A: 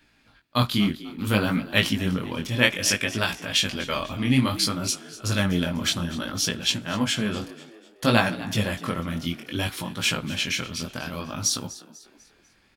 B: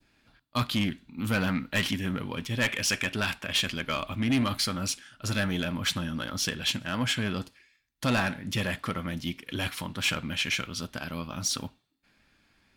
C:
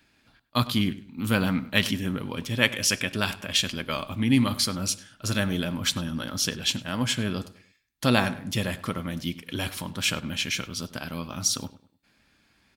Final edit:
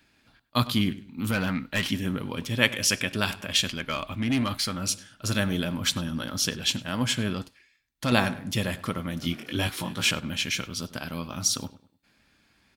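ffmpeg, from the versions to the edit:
-filter_complex "[1:a]asplit=3[a][b][c];[2:a]asplit=5[d][e][f][g][h];[d]atrim=end=1.312[i];[a]atrim=start=1.308:end=1.912[j];[e]atrim=start=1.908:end=3.712[k];[b]atrim=start=3.708:end=4.872[l];[f]atrim=start=4.868:end=7.342[m];[c]atrim=start=7.338:end=8.122[n];[g]atrim=start=8.118:end=9.222[o];[0:a]atrim=start=9.218:end=10.112[p];[h]atrim=start=10.108[q];[i][j]acrossfade=d=0.004:c1=hsin:c2=hsin[r];[r][k]acrossfade=d=0.004:c1=hsin:c2=hsin[s];[s][l]acrossfade=d=0.004:c1=hsin:c2=hsin[t];[t][m]acrossfade=d=0.004:c1=hsin:c2=hsin[u];[u][n]acrossfade=d=0.004:c1=hsin:c2=hsin[v];[v][o]acrossfade=d=0.004:c1=hsin:c2=hsin[w];[w][p]acrossfade=d=0.004:c1=hsin:c2=hsin[x];[x][q]acrossfade=d=0.004:c1=hsin:c2=hsin"

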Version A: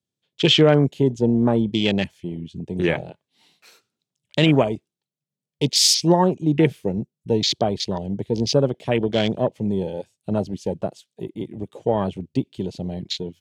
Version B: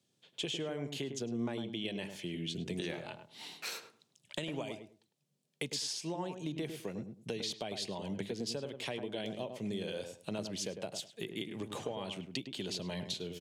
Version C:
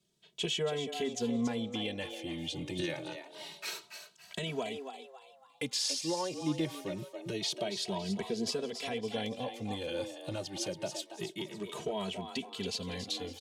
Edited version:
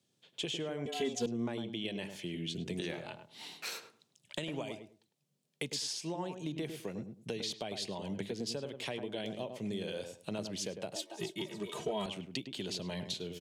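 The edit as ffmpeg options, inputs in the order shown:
-filter_complex "[2:a]asplit=2[a][b];[1:a]asplit=3[c][d][e];[c]atrim=end=0.862[f];[a]atrim=start=0.858:end=1.262[g];[d]atrim=start=1.258:end=10.962[h];[b]atrim=start=10.958:end=12.062[i];[e]atrim=start=12.058[j];[f][g]acrossfade=d=0.004:c1=hsin:c2=hsin[k];[k][h]acrossfade=d=0.004:c1=hsin:c2=hsin[l];[l][i]acrossfade=d=0.004:c1=hsin:c2=hsin[m];[m][j]acrossfade=d=0.004:c1=hsin:c2=hsin"

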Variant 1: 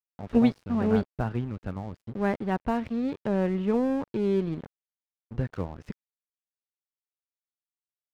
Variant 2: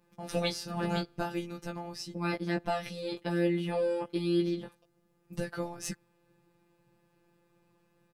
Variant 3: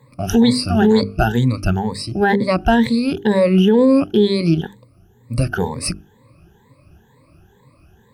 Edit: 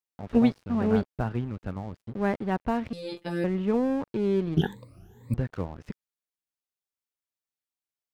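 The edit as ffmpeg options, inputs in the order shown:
-filter_complex "[0:a]asplit=3[a][b][c];[a]atrim=end=2.932[d];[1:a]atrim=start=2.928:end=3.442[e];[b]atrim=start=3.438:end=4.572[f];[2:a]atrim=start=4.568:end=5.342[g];[c]atrim=start=5.338[h];[d][e]acrossfade=d=0.004:c1=hsin:c2=hsin[i];[i][f]acrossfade=d=0.004:c1=hsin:c2=hsin[j];[j][g]acrossfade=d=0.004:c1=hsin:c2=hsin[k];[k][h]acrossfade=d=0.004:c1=hsin:c2=hsin"

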